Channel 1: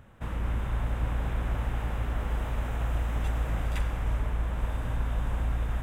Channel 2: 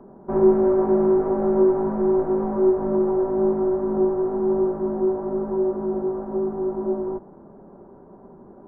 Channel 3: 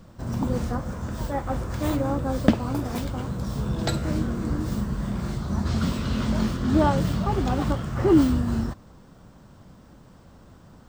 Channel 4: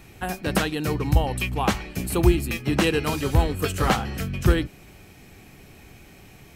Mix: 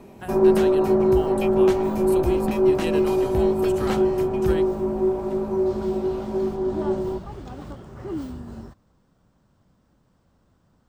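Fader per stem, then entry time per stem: -16.5, 0.0, -13.5, -8.5 dB; 1.55, 0.00, 0.00, 0.00 s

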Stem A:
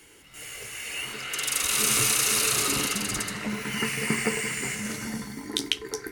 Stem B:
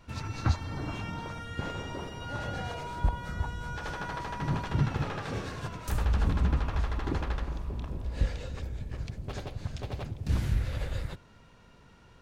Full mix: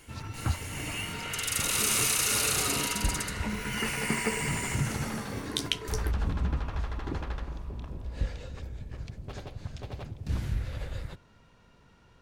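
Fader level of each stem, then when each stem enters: -3.5, -3.0 dB; 0.00, 0.00 s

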